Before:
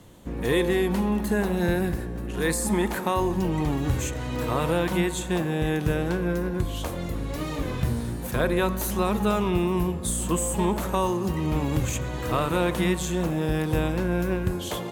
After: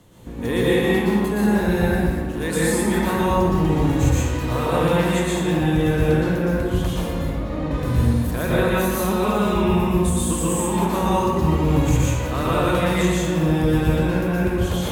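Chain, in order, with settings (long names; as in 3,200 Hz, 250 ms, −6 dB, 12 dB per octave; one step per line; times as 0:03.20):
0:07.18–0:07.71: low-pass filter 1,200 Hz 6 dB per octave
convolution reverb RT60 1.7 s, pre-delay 111 ms, DRR −7 dB
level −2.5 dB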